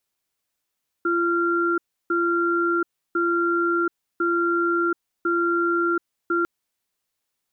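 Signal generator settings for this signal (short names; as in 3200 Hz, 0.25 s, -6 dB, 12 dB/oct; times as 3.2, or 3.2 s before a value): cadence 342 Hz, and 1380 Hz, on 0.73 s, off 0.32 s, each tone -21.5 dBFS 5.40 s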